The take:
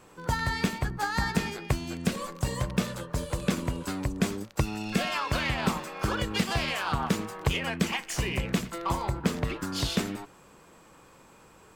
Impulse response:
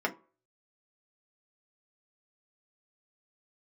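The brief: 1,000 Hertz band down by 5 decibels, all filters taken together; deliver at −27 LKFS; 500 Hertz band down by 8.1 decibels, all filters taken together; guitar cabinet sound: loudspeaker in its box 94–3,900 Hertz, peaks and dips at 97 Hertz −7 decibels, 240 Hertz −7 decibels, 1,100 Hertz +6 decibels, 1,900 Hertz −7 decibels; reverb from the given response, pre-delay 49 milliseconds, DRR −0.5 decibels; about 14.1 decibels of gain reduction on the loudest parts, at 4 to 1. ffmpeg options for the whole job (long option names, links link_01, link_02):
-filter_complex "[0:a]equalizer=frequency=500:width_type=o:gain=-8.5,equalizer=frequency=1000:width_type=o:gain=-7,acompressor=threshold=-40dB:ratio=4,asplit=2[link_01][link_02];[1:a]atrim=start_sample=2205,adelay=49[link_03];[link_02][link_03]afir=irnorm=-1:irlink=0,volume=-8dB[link_04];[link_01][link_04]amix=inputs=2:normalize=0,highpass=94,equalizer=frequency=97:width_type=q:width=4:gain=-7,equalizer=frequency=240:width_type=q:width=4:gain=-7,equalizer=frequency=1100:width_type=q:width=4:gain=6,equalizer=frequency=1900:width_type=q:width=4:gain=-7,lowpass=frequency=3900:width=0.5412,lowpass=frequency=3900:width=1.3066,volume=15dB"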